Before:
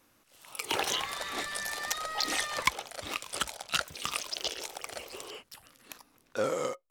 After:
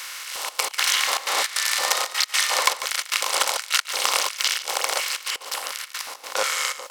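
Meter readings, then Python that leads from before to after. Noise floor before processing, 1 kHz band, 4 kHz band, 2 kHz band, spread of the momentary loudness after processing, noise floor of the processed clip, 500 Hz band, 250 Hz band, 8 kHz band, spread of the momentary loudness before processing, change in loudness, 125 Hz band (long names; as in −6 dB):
−67 dBFS, +9.5 dB, +12.0 dB, +10.5 dB, 9 LU, −42 dBFS, +3.5 dB, can't be measured, +13.5 dB, 16 LU, +10.5 dB, below −15 dB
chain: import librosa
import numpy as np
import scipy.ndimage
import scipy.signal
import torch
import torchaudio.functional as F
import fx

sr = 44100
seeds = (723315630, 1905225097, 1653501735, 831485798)

y = fx.bin_compress(x, sr, power=0.4)
y = fx.bass_treble(y, sr, bass_db=-6, treble_db=6)
y = fx.step_gate(y, sr, bpm=154, pattern='xxxxx.x.xxxx.xx.', floor_db=-24.0, edge_ms=4.5)
y = scipy.signal.sosfilt(scipy.signal.butter(2, 85.0, 'highpass', fs=sr, output='sos'), y)
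y = fx.low_shelf(y, sr, hz=410.0, db=9.0)
y = y + 10.0 ** (-13.0 / 20.0) * np.pad(y, (int(145 * sr / 1000.0), 0))[:len(y)]
y = fx.filter_lfo_highpass(y, sr, shape='square', hz=1.4, low_hz=720.0, high_hz=1600.0, q=1.3)
y = y * 10.0 ** (1.0 / 20.0)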